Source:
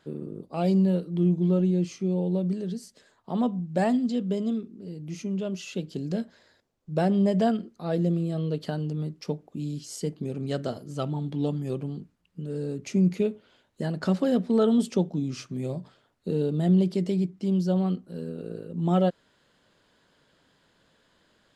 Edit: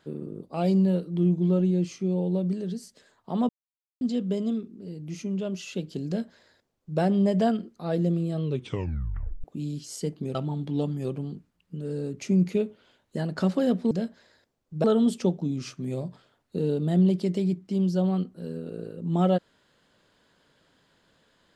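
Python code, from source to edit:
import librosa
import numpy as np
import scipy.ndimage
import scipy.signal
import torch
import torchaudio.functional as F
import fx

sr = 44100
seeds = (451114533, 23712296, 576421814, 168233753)

y = fx.edit(x, sr, fx.silence(start_s=3.49, length_s=0.52),
    fx.duplicate(start_s=6.07, length_s=0.93, to_s=14.56),
    fx.tape_stop(start_s=8.43, length_s=1.01),
    fx.cut(start_s=10.35, length_s=0.65), tone=tone)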